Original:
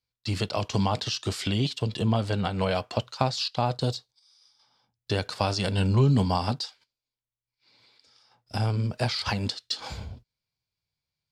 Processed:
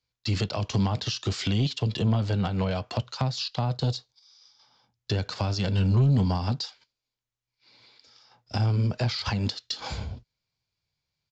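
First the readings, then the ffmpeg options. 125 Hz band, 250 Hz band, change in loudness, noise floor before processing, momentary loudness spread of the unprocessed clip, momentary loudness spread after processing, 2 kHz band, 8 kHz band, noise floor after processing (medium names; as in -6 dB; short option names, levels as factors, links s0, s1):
+2.0 dB, 0.0 dB, 0.0 dB, under -85 dBFS, 9 LU, 10 LU, -2.5 dB, -1.5 dB, under -85 dBFS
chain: -filter_complex "[0:a]acrossover=split=220[s0][s1];[s1]acompressor=threshold=0.0251:ratio=5[s2];[s0][s2]amix=inputs=2:normalize=0,aresample=16000,asoftclip=type=tanh:threshold=0.106,aresample=44100,volume=1.58"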